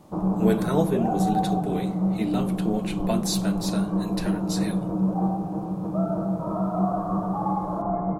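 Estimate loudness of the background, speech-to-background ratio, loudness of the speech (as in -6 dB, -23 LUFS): -26.5 LUFS, -3.0 dB, -29.5 LUFS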